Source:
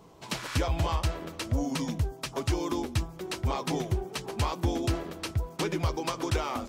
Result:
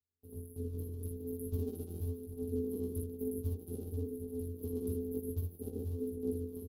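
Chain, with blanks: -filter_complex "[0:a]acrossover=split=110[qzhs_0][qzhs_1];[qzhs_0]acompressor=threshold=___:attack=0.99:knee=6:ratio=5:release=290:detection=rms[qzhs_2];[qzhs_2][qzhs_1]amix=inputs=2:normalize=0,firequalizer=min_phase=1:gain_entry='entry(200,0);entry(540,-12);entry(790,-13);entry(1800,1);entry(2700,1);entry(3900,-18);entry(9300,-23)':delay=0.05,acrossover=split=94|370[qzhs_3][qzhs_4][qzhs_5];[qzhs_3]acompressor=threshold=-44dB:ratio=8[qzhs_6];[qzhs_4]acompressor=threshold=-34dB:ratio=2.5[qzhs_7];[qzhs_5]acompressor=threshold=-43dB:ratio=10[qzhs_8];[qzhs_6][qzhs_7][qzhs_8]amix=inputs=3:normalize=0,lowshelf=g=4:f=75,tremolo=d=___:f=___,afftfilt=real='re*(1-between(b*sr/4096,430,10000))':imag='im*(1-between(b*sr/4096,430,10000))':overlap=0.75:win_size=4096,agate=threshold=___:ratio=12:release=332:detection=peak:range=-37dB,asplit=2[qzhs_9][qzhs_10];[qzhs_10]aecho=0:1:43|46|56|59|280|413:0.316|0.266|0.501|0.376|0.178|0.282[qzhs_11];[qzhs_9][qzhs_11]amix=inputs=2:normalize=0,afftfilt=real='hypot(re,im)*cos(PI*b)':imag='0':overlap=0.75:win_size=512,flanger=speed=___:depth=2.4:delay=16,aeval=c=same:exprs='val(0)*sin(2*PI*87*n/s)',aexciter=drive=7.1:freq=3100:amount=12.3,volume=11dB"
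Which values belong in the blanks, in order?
-45dB, 0.7, 7.8, -52dB, 0.52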